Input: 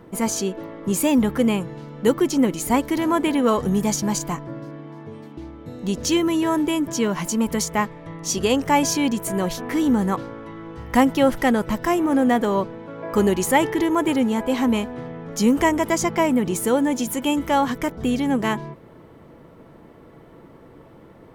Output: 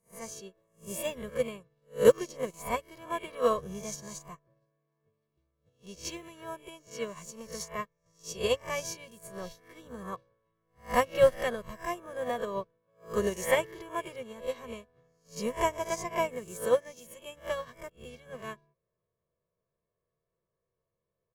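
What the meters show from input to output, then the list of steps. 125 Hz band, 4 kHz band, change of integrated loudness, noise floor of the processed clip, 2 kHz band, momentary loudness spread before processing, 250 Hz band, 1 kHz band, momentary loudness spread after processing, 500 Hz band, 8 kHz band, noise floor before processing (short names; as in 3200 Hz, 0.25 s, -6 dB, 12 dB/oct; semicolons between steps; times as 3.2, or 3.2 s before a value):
-16.0 dB, -12.0 dB, -10.5 dB, under -85 dBFS, -10.5 dB, 14 LU, -23.0 dB, -12.0 dB, 18 LU, -6.5 dB, -14.0 dB, -47 dBFS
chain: spectral swells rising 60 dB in 0.58 s; comb 1.8 ms, depth 94%; upward expander 2.5:1, over -34 dBFS; gain -4.5 dB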